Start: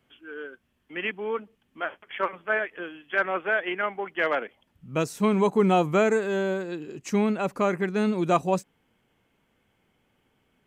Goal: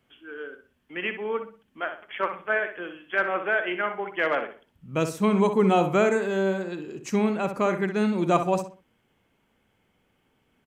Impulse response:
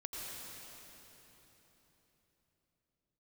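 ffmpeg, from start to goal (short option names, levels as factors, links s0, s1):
-filter_complex "[0:a]asplit=2[s0][s1];[s1]adelay=62,lowpass=f=2900:p=1,volume=0.398,asplit=2[s2][s3];[s3]adelay=62,lowpass=f=2900:p=1,volume=0.33,asplit=2[s4][s5];[s5]adelay=62,lowpass=f=2900:p=1,volume=0.33,asplit=2[s6][s7];[s7]adelay=62,lowpass=f=2900:p=1,volume=0.33[s8];[s0][s2][s4][s6][s8]amix=inputs=5:normalize=0"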